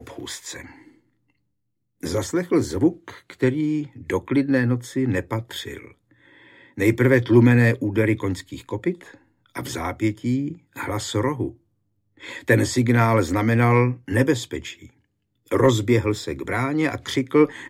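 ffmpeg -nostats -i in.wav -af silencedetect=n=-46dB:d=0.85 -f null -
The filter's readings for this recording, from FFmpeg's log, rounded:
silence_start: 0.95
silence_end: 2.01 | silence_duration: 1.06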